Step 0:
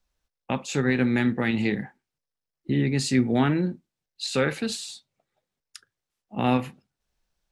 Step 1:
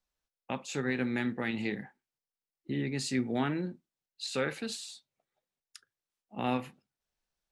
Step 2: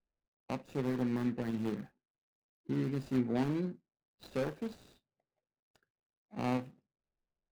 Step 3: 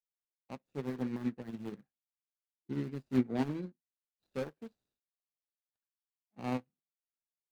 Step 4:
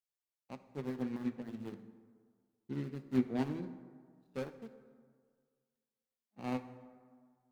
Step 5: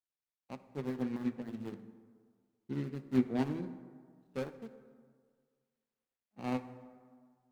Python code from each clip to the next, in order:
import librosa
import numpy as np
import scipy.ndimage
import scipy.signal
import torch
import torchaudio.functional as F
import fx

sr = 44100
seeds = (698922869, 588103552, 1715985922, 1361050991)

y1 = fx.low_shelf(x, sr, hz=170.0, db=-7.5)
y1 = y1 * 10.0 ** (-7.0 / 20.0)
y2 = scipy.signal.medfilt(y1, 41)
y3 = fx.upward_expand(y2, sr, threshold_db=-50.0, expansion=2.5)
y3 = y3 * 10.0 ** (4.5 / 20.0)
y4 = fx.rev_plate(y3, sr, seeds[0], rt60_s=1.8, hf_ratio=0.5, predelay_ms=0, drr_db=10.5)
y4 = y4 * 10.0 ** (-2.5 / 20.0)
y5 = scipy.signal.medfilt(y4, 9)
y5 = y5 * 10.0 ** (2.0 / 20.0)